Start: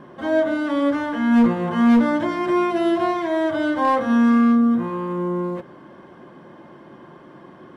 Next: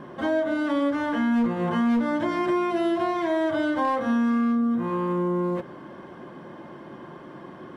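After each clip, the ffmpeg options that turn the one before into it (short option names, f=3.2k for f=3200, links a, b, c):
-af "acompressor=threshold=-24dB:ratio=4,volume=2dB"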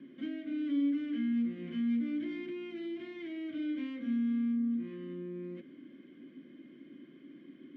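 -filter_complex "[0:a]acrossover=split=240[a][b];[b]asoftclip=type=tanh:threshold=-24dB[c];[a][c]amix=inputs=2:normalize=0,asplit=3[d][e][f];[d]bandpass=f=270:t=q:w=8,volume=0dB[g];[e]bandpass=f=2.29k:t=q:w=8,volume=-6dB[h];[f]bandpass=f=3.01k:t=q:w=8,volume=-9dB[i];[g][h][i]amix=inputs=3:normalize=0"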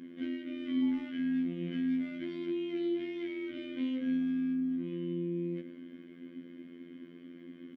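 -filter_complex "[0:a]asplit=2[a][b];[b]adelay=110,highpass=300,lowpass=3.4k,asoftclip=type=hard:threshold=-33dB,volume=-12dB[c];[a][c]amix=inputs=2:normalize=0,afftfilt=real='hypot(re,im)*cos(PI*b)':imag='0':win_size=2048:overlap=0.75,volume=7dB"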